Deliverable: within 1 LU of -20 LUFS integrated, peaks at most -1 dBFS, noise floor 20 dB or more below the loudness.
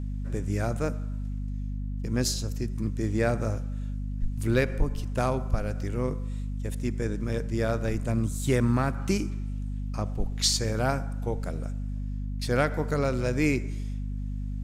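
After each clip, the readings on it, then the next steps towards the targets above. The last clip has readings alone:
hum 50 Hz; highest harmonic 250 Hz; hum level -29 dBFS; loudness -29.5 LUFS; peak level -12.0 dBFS; loudness target -20.0 LUFS
-> hum notches 50/100/150/200/250 Hz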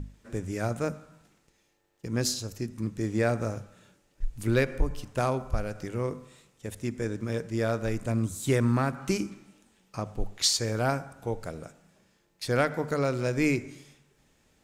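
hum not found; loudness -29.5 LUFS; peak level -13.0 dBFS; loudness target -20.0 LUFS
-> trim +9.5 dB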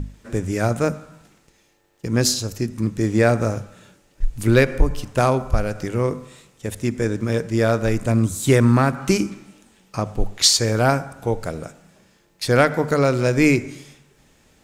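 loudness -20.0 LUFS; peak level -3.5 dBFS; noise floor -59 dBFS

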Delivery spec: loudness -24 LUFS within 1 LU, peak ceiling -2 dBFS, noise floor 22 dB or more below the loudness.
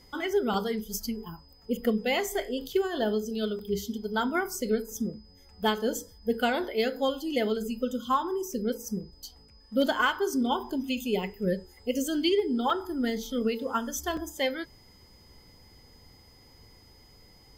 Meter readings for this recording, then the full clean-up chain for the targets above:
dropouts 4; longest dropout 2.4 ms; steady tone 5 kHz; tone level -58 dBFS; loudness -29.5 LUFS; peak level -15.0 dBFS; loudness target -24.0 LUFS
-> interpolate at 0.54/3.59/12.70/14.17 s, 2.4 ms; band-stop 5 kHz, Q 30; trim +5.5 dB

